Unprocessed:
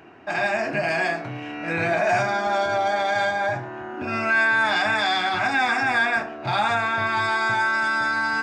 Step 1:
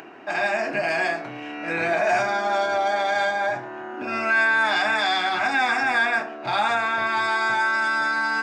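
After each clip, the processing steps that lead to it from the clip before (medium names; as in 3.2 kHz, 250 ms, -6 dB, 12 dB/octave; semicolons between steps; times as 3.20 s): high-pass 230 Hz 12 dB/octave; upward compressor, threshold -37 dBFS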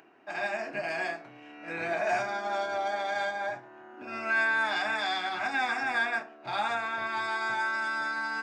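upward expansion 1.5:1, over -37 dBFS; trim -6.5 dB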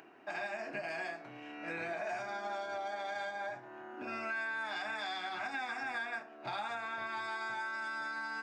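compression 4:1, threshold -39 dBFS, peak gain reduction 13 dB; trim +1 dB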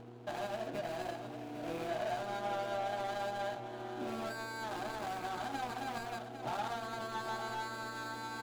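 median filter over 25 samples; delay 803 ms -10.5 dB; mains buzz 120 Hz, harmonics 4, -57 dBFS -2 dB/octave; trim +4 dB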